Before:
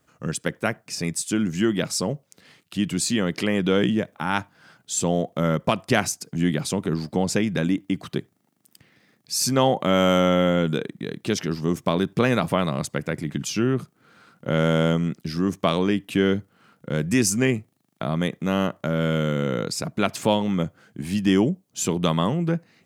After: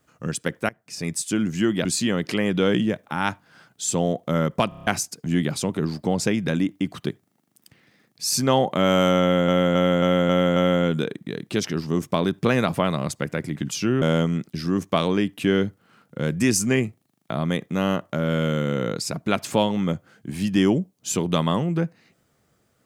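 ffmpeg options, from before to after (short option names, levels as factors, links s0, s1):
-filter_complex "[0:a]asplit=15[s0][s1][s2][s3][s4][s5][s6][s7][s8][s9][s10][s11][s12][s13][s14];[s0]atrim=end=0.69,asetpts=PTS-STARTPTS,afade=t=out:st=0.686:d=0.004:c=hsin:silence=0.0749894[s15];[s1]atrim=start=0.69:end=1.852,asetpts=PTS-STARTPTS,afade=t=in:d=0.44:silence=0.0749894[s16];[s2]atrim=start=2.938:end=5.812[s17];[s3]atrim=start=5.778:end=5.812[s18];[s4]atrim=start=5.778:end=5.812[s19];[s5]atrim=start=5.778:end=5.812[s20];[s6]atrim=start=5.778:end=5.812[s21];[s7]atrim=start=5.778:end=5.812[s22];[s8]atrim=start=5.958:end=10.572[s23];[s9]atrim=start=10.298:end=10.572[s24];[s10]atrim=start=10.298:end=10.572[s25];[s11]atrim=start=10.298:end=10.572[s26];[s12]atrim=start=10.298:end=10.572[s27];[s13]atrim=start=10.298:end=13.762[s28];[s14]atrim=start=14.728[s29];[s15][s16]concat=n=2:v=0:a=1[s30];[s30][s17]acrossfade=d=0.004:c1=hsin:c2=hsin[s31];[s31][s18]acrossfade=d=0.004:c1=hsin:c2=hsin[s32];[s32][s19]acrossfade=d=0.004:c1=hsin:c2=hsin[s33];[s33][s20]acrossfade=d=0.004:c1=hsin:c2=hsin[s34];[s34][s21]acrossfade=d=0.004:c1=hsin:c2=hsin[s35];[s35][s22]acrossfade=d=0.004:c1=hsin:c2=hsin[s36];[s36][s23]acrossfade=d=0.004:c1=hsin:c2=hsin[s37];[s37][s24]acrossfade=d=0.004:c1=hsin:c2=hsin[s38];[s38][s25]acrossfade=d=0.004:c1=hsin:c2=hsin[s39];[s39][s26]acrossfade=d=0.004:c1=hsin:c2=hsin[s40];[s40][s27]acrossfade=d=0.004:c1=hsin:c2=hsin[s41];[s41][s28]acrossfade=d=0.004:c1=hsin:c2=hsin[s42];[s42][s29]acrossfade=d=0.004:c1=hsin:c2=hsin"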